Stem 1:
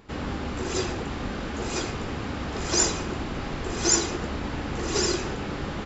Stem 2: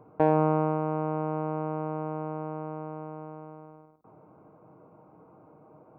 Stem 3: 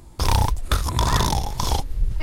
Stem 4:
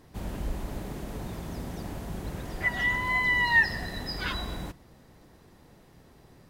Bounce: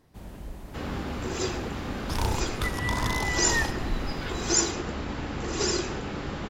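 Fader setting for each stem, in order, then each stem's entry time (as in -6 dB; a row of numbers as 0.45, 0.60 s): -2.0 dB, off, -9.5 dB, -7.0 dB; 0.65 s, off, 1.90 s, 0.00 s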